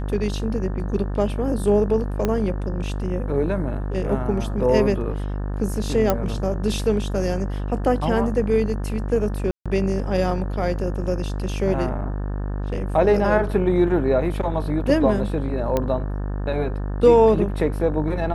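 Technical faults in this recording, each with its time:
buzz 50 Hz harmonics 36 -26 dBFS
2.25 s: pop -9 dBFS
6.10 s: pop -6 dBFS
9.51–9.66 s: dropout 146 ms
15.77 s: pop -9 dBFS

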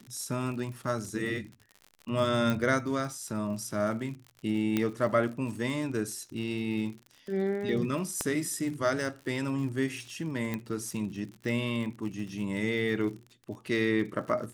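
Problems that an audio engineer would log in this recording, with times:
crackle 69 per s -38 dBFS
2.50 s: pop
4.77 s: pop -14 dBFS
8.21 s: pop -15 dBFS
10.54 s: pop -19 dBFS

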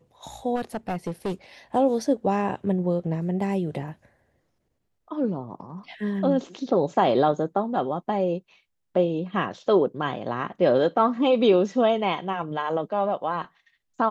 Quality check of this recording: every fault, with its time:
0.55–1.33 s: clipped -23.5 dBFS

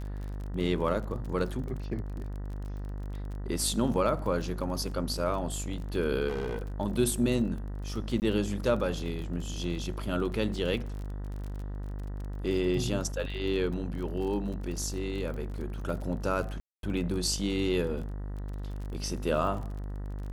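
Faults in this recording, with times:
buzz 50 Hz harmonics 39 -36 dBFS
crackle 33 per s -37 dBFS
6.28–6.68 s: clipped -28.5 dBFS
8.20–8.22 s: dropout 19 ms
16.60–16.83 s: dropout 232 ms

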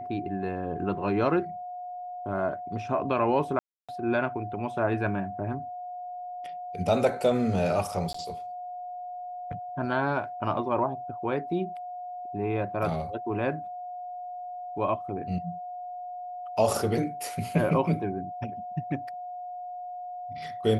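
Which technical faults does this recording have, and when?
whine 720 Hz -35 dBFS
3.59–3.89 s: dropout 296 ms
8.13–8.14 s: dropout 14 ms

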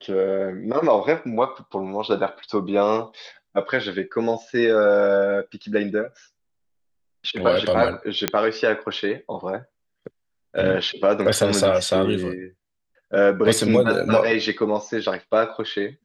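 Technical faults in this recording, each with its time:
8.28 s: pop -2 dBFS

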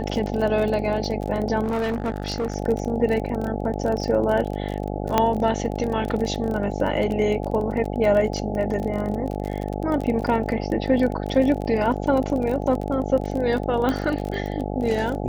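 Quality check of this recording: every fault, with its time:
buzz 50 Hz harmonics 17 -28 dBFS
crackle 33 per s -27 dBFS
1.63–2.56 s: clipped -21 dBFS
5.18 s: pop -4 dBFS
13.89 s: pop -12 dBFS

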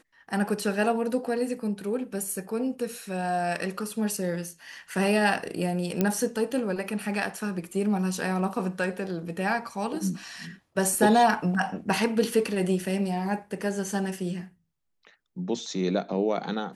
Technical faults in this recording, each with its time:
6.01 s: pop -10 dBFS

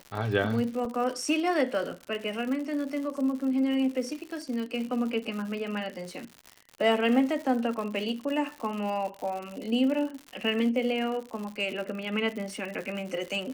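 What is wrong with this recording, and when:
crackle 130 per s -34 dBFS
0.85 s: dropout 2.8 ms

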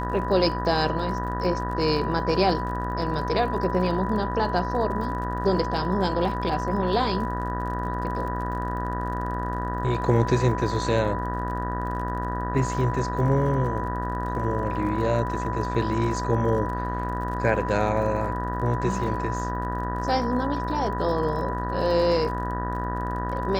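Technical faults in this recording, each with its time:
buzz 60 Hz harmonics 32 -30 dBFS
crackle 42 per s -35 dBFS
whine 990 Hz -30 dBFS

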